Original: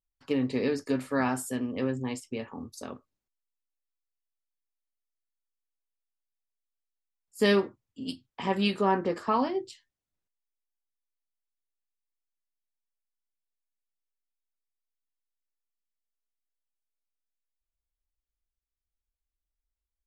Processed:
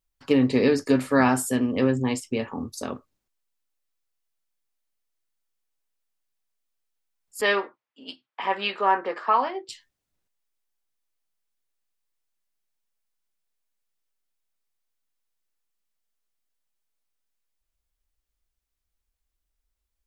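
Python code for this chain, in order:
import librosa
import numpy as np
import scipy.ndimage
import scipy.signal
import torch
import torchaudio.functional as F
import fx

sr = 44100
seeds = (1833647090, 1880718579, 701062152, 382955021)

y = fx.bandpass_edges(x, sr, low_hz=730.0, high_hz=2600.0, at=(7.41, 9.69))
y = y * librosa.db_to_amplitude(8.0)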